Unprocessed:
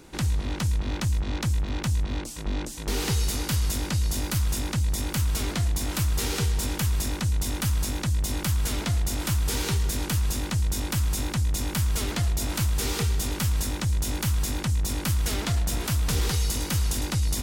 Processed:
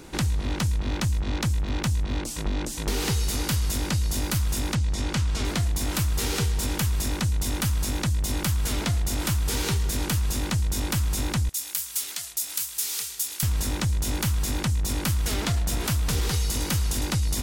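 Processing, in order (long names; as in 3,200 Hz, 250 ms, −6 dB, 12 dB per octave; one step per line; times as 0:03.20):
0:04.75–0:05.45: low-pass filter 6,500 Hz 12 dB per octave
0:11.49–0:13.43: first difference
downward compressor 3 to 1, threshold −28 dBFS, peak gain reduction 6 dB
level +5 dB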